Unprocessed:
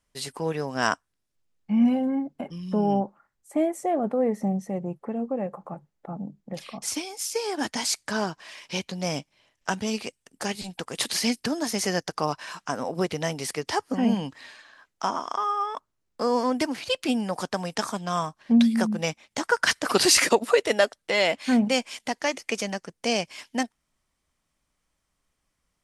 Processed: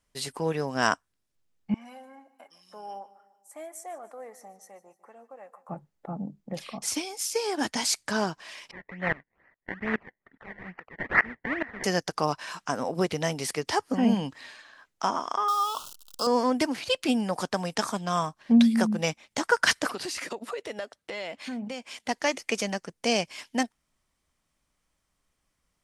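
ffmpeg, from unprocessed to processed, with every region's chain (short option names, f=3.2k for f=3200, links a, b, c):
-filter_complex "[0:a]asettb=1/sr,asplit=3[a][b][c];[a]atrim=end=1.744[d];[b]atrim=start=1.74:end=5.69,asetpts=PTS-STARTPTS,afade=t=in:d=0.004:c=qsin,afade=t=out:st=3.946:d=0.004:c=qsin,highpass=1.4k,equalizer=f=2.8k:w=1:g=-11,aecho=1:1:149|298|447|596:0.133|0.0627|0.0295|0.0138,atrim=end_sample=174195[e];[c]atrim=start=5.686[f];[d][e]acrossfade=d=0.004:c1=hsin:c2=qsin[g];[g][f]acrossfade=d=0.004:c1=qsin:c2=hsin,asettb=1/sr,asplit=3[h][i][j];[h]atrim=end=8.714[k];[i]atrim=start=8.71:end=11.84,asetpts=PTS-STARTPTS,afade=t=in:d=0.004:c=qsin,afade=t=out:st=3.126:d=0.004:c=qsin,acrusher=samples=24:mix=1:aa=0.000001:lfo=1:lforange=24:lforate=2.3,lowpass=f=1.9k:t=q:w=9.2,aeval=exprs='val(0)*pow(10,-23*if(lt(mod(-2.4*n/s,1),2*abs(-2.4)/1000),1-mod(-2.4*n/s,1)/(2*abs(-2.4)/1000),(mod(-2.4*n/s,1)-2*abs(-2.4)/1000)/(1-2*abs(-2.4)/1000))/20)':c=same[l];[j]atrim=start=11.836[m];[k][l]acrossfade=d=0.004:c1=hsin:c2=qsin[n];[n][m]acrossfade=d=0.004:c1=qsin:c2=hsin,asettb=1/sr,asplit=3[o][p][q];[o]atrim=end=15.484[r];[p]atrim=start=15.48:end=16.27,asetpts=PTS-STARTPTS,afade=t=in:d=0.004:c=qsin,afade=t=out:st=0.786:d=0.004:c=qsin,aeval=exprs='val(0)+0.5*0.0126*sgn(val(0))':c=same,asuperstop=centerf=2000:order=8:qfactor=1.5,tiltshelf=f=1.1k:g=-9.5[s];[q]atrim=start=16.266[t];[r][s]acrossfade=d=0.004:c1=hsin:c2=qsin[u];[u][t]acrossfade=d=0.004:c1=qsin:c2=hsin,asettb=1/sr,asplit=3[v][w][x];[v]atrim=end=19.894[y];[w]atrim=start=19.89:end=22.09,asetpts=PTS-STARTPTS,afade=t=in:d=0.004:c=qsin,afade=t=out:st=2.196:d=0.004:c=qsin,highpass=50,highshelf=f=5k:g=-5.5,acompressor=threshold=-36dB:ratio=3:attack=3.2:release=140:knee=1:detection=peak[z];[x]atrim=start=22.086[aa];[y][z]acrossfade=d=0.004:c1=hsin:c2=qsin[ab];[ab][aa]acrossfade=d=0.004:c1=qsin:c2=hsin"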